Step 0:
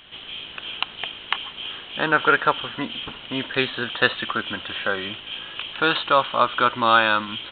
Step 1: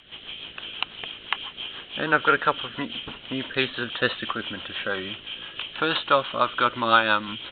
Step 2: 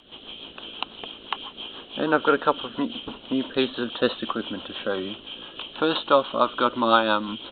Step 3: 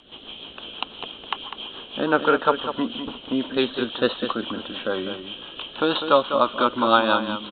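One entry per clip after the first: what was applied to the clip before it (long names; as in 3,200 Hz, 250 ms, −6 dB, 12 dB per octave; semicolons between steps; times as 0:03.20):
rotating-speaker cabinet horn 6 Hz
octave-band graphic EQ 125/250/500/1,000/2,000/4,000 Hz −6/+7/+3/+4/−12/+3 dB
single-tap delay 200 ms −9 dB; level +1.5 dB; MP3 64 kbit/s 24,000 Hz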